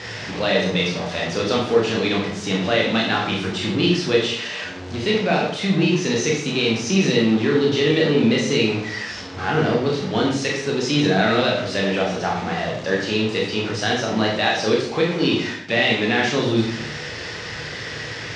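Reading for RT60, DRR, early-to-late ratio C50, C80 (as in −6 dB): 0.70 s, −2.5 dB, 4.0 dB, 7.0 dB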